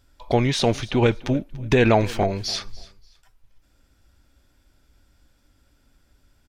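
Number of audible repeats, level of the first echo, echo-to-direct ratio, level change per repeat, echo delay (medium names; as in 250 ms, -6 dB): 2, -20.5 dB, -20.0 dB, -12.0 dB, 289 ms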